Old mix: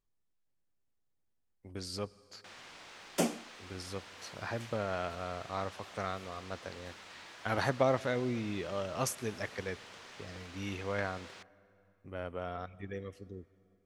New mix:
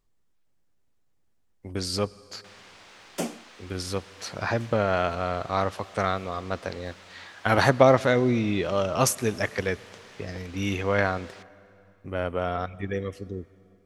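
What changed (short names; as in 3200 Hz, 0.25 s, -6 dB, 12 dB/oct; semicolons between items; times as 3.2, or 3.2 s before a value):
speech +11.5 dB; first sound: send on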